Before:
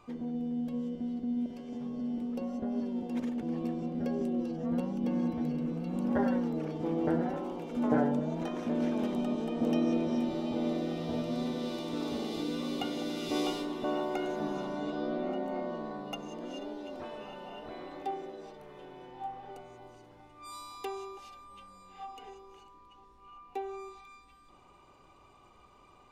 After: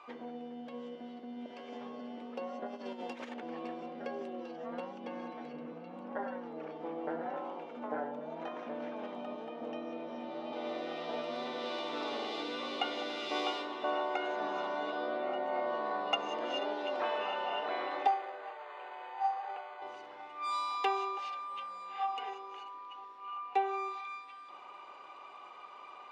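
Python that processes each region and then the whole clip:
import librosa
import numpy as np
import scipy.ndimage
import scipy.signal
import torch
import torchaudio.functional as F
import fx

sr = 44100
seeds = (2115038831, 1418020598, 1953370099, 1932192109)

y = fx.chain(x, sr, fx.high_shelf(hz=4400.0, db=11.0),
    fx.over_compress(threshold_db=-35.0, ratio=-0.5),
    fx.doubler(ms=24.0, db=-14.0), at=(2.66, 3.34))
y = fx.chain(y, sr, fx.tilt_eq(slope=-2.0),
    fx.notch(hz=370.0, q=12.0), at=(5.53, 10.53))
y = fx.chain(y, sr, fx.highpass(hz=670.0, slope=12),
    fx.resample_linear(factor=8), at=(18.07, 19.82))
y = scipy.signal.sosfilt(scipy.signal.butter(2, 3200.0, 'lowpass', fs=sr, output='sos'), y)
y = fx.rider(y, sr, range_db=10, speed_s=0.5)
y = scipy.signal.sosfilt(scipy.signal.butter(2, 700.0, 'highpass', fs=sr, output='sos'), y)
y = F.gain(torch.from_numpy(y), 3.0).numpy()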